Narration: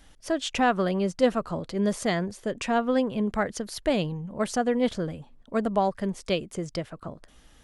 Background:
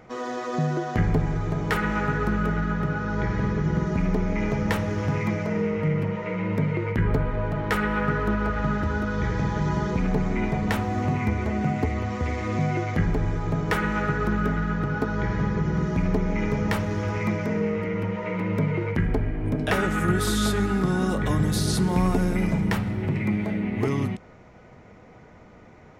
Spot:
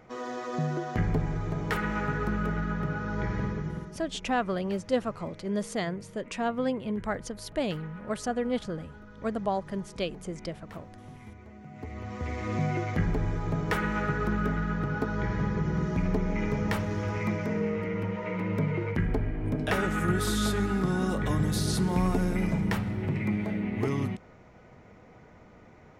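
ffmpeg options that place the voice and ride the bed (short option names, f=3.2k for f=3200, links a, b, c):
-filter_complex "[0:a]adelay=3700,volume=-5dB[a];[1:a]volume=13.5dB,afade=t=out:st=3.38:d=0.6:silence=0.133352,afade=t=in:st=11.7:d=0.84:silence=0.11885[b];[a][b]amix=inputs=2:normalize=0"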